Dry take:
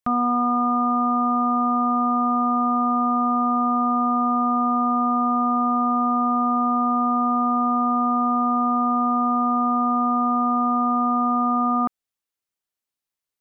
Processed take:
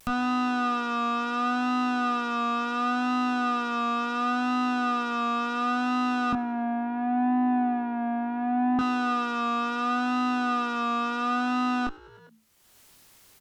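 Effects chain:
0:06.33–0:08.79: Butterworth low-pass 1,000 Hz 96 dB per octave
pitch vibrato 0.71 Hz 48 cents
tube saturation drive 25 dB, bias 0.75
brickwall limiter −27 dBFS, peak gain reduction 6 dB
low-shelf EQ 210 Hz +7 dB
double-tracking delay 23 ms −5.5 dB
echo with shifted repeats 100 ms, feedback 59%, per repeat +55 Hz, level −23 dB
upward compression, threshold −35 dBFS
level +4 dB

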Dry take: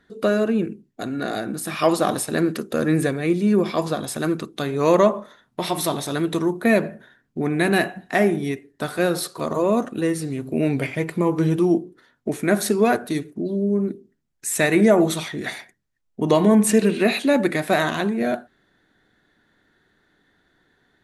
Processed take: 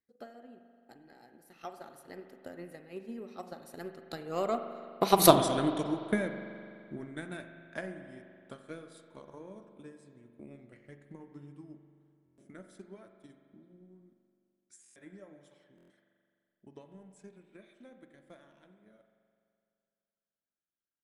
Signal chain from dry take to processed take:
source passing by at 0:05.31, 35 m/s, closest 3.6 metres
transient designer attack +10 dB, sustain −2 dB
spring reverb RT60 2.4 s, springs 42 ms, chirp 70 ms, DRR 7.5 dB
buffer that repeats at 0:12.24/0:14.82/0:15.76, samples 1,024, times 5

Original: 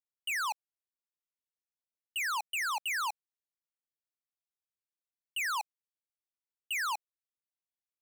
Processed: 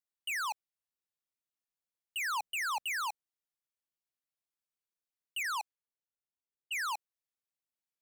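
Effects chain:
0:02.22–0:02.92: low-shelf EQ 420 Hz +10.5 dB
0:05.43–0:06.88: low-pass that shuts in the quiet parts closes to 770 Hz, open at −34 dBFS
level −2 dB

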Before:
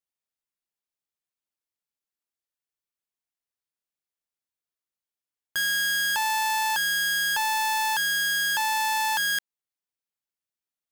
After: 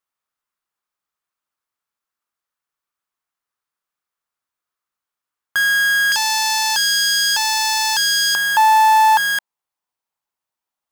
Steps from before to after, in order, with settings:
parametric band 1,200 Hz +12.5 dB 1.1 octaves, from 0:06.12 5,300 Hz, from 0:08.35 940 Hz
level +3.5 dB

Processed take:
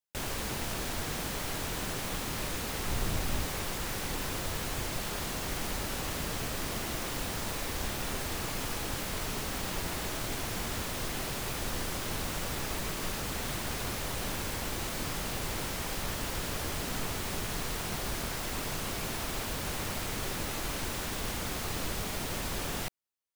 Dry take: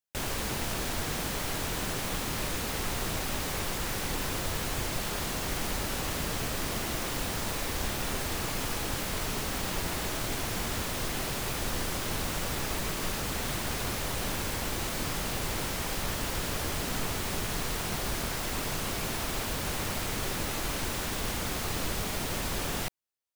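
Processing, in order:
0:02.88–0:03.46: low-shelf EQ 180 Hz +7.5 dB
level −2.5 dB

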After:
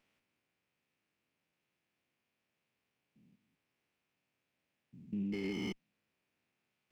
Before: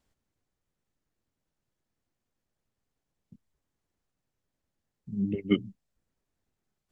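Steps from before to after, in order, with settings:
spectrum averaged block by block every 200 ms
high-pass filter 150 Hz 12 dB per octave
brickwall limiter −33 dBFS, peak gain reduction 7.5 dB
parametric band 2,500 Hz +13.5 dB 0.78 octaves
windowed peak hold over 5 samples
level +1.5 dB

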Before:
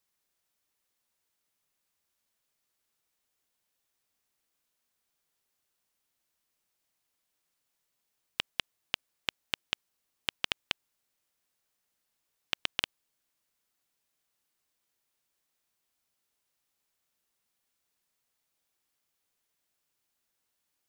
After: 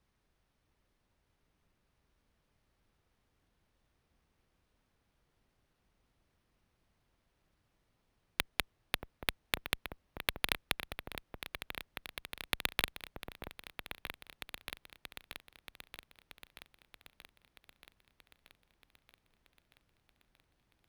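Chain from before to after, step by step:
RIAA equalisation playback
harmonic generator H 5 −18 dB, 7 −26 dB, 8 −10 dB, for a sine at −9.5 dBFS
echo whose low-pass opens from repeat to repeat 630 ms, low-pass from 750 Hz, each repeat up 2 octaves, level −6 dB
bad sample-rate conversion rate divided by 3×, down filtered, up hold
level +5 dB

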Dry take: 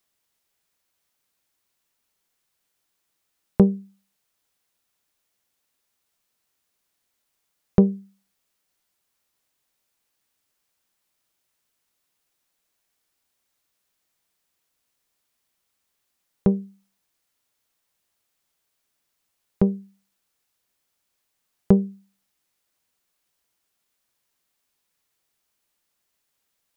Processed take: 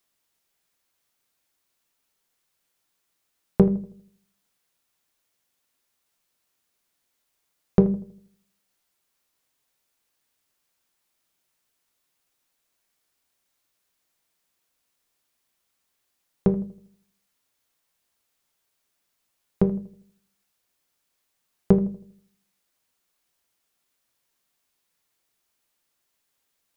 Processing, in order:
mains-hum notches 50/100/150/200 Hz
feedback echo with a low-pass in the loop 80 ms, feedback 46%, low-pass 1,000 Hz, level −14 dB
on a send at −9.5 dB: convolution reverb RT60 0.35 s, pre-delay 3 ms

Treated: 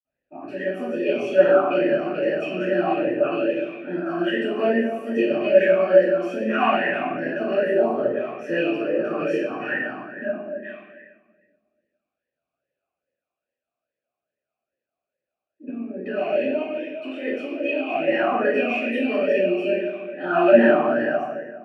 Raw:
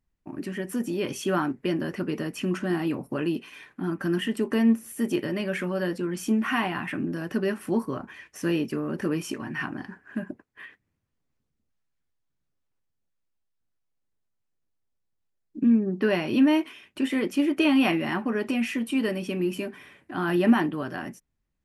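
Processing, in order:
0:15.63–0:17.95: downward compressor, threshold −29 dBFS, peak gain reduction 13 dB
convolution reverb RT60 1.5 s, pre-delay 46 ms
formant filter swept between two vowels a-e 2.4 Hz
level +7.5 dB

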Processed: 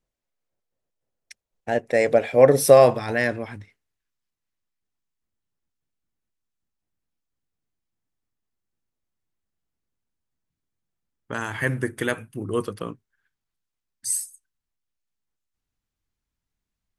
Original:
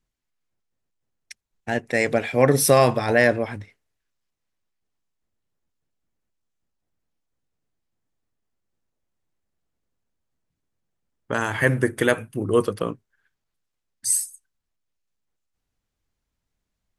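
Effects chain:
parametric band 560 Hz +10 dB 0.94 octaves, from 0:02.97 −4 dB
level −4 dB

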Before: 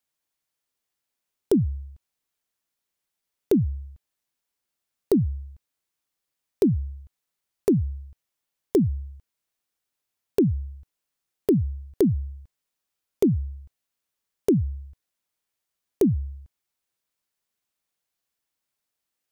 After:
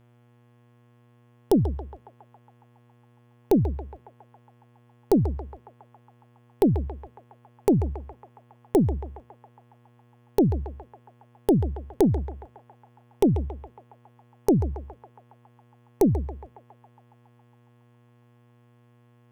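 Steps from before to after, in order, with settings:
harmonic generator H 2 −11 dB, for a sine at −9.5 dBFS
hum with harmonics 120 Hz, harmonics 29, −58 dBFS −7 dB per octave
feedback echo with a band-pass in the loop 138 ms, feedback 79%, band-pass 1,100 Hz, level −8 dB

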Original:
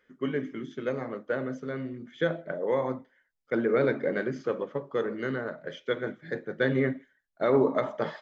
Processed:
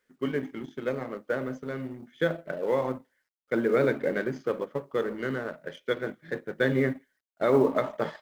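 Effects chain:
mu-law and A-law mismatch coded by A
level +1.5 dB

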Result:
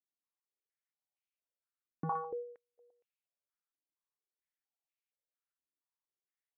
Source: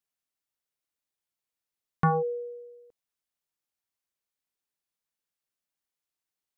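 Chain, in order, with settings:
0:02.12–0:02.78: noise gate −36 dBFS, range −23 dB
on a send: single-tap delay 120 ms −10.5 dB
on the sum: band-pass on a step sequencer 4.3 Hz 300–2,500 Hz

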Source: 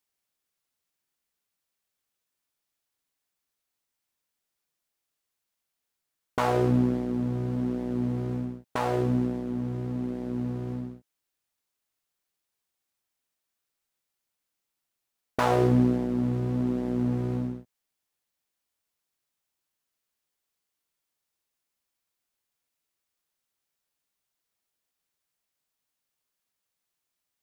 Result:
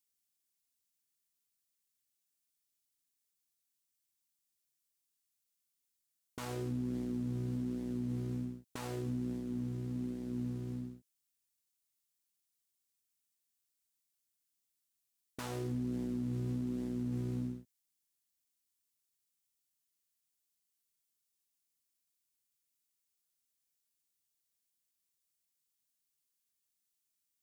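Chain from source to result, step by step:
drawn EQ curve 300 Hz 0 dB, 650 Hz −11 dB, 8,000 Hz +8 dB
brickwall limiter −22.5 dBFS, peak gain reduction 10 dB
level −7 dB

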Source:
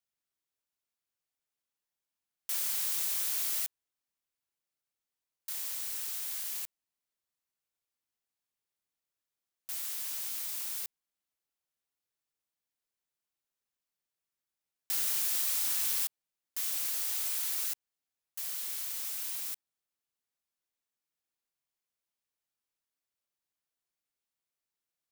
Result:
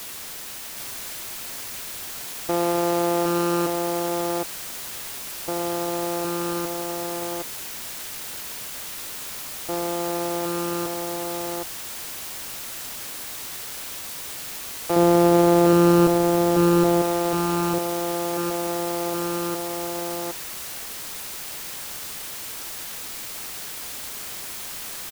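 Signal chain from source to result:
samples sorted by size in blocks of 256 samples
flat-topped bell 610 Hz +15 dB 2.3 octaves
notch filter 1,000 Hz, Q 6.5
bit-depth reduction 6 bits, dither triangular
0:14.96–0:17.02: low-shelf EQ 380 Hz +10.5 dB
single-tap delay 767 ms −3.5 dB

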